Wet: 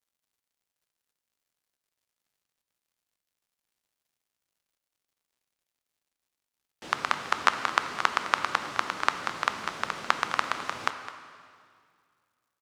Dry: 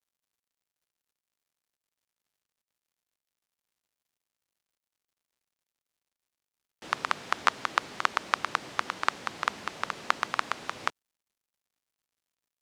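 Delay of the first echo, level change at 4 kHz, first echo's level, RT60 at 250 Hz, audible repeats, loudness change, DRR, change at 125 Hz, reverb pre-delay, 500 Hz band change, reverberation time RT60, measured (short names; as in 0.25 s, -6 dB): 0.21 s, +2.5 dB, -14.5 dB, 2.4 s, 1, +2.0 dB, 7.5 dB, +2.5 dB, 10 ms, +2.5 dB, 2.2 s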